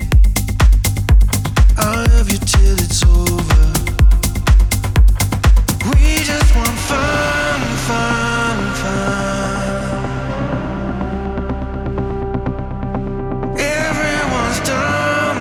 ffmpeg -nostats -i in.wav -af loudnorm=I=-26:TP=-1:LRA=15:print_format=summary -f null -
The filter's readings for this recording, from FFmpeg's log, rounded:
Input Integrated:    -16.2 LUFS
Input True Peak:      -2.5 dBTP
Input LRA:             6.5 LU
Input Threshold:     -26.2 LUFS